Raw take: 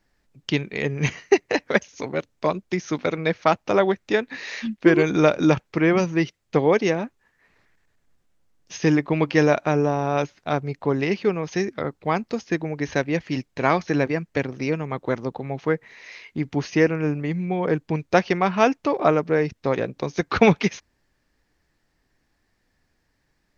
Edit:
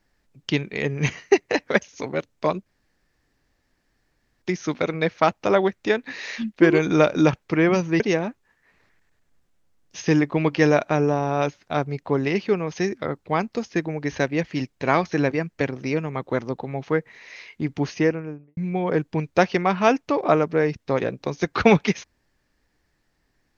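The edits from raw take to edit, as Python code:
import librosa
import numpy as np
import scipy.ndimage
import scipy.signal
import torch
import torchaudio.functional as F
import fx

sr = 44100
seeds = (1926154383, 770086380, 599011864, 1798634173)

y = fx.studio_fade_out(x, sr, start_s=16.6, length_s=0.73)
y = fx.edit(y, sr, fx.insert_room_tone(at_s=2.66, length_s=1.76),
    fx.cut(start_s=6.24, length_s=0.52), tone=tone)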